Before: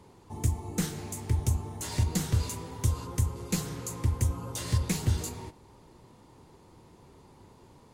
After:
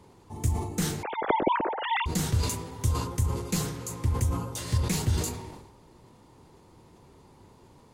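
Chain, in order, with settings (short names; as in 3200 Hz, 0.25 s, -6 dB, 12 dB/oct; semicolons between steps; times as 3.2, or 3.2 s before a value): 1.03–2.06 sine-wave speech; sustainer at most 59 dB/s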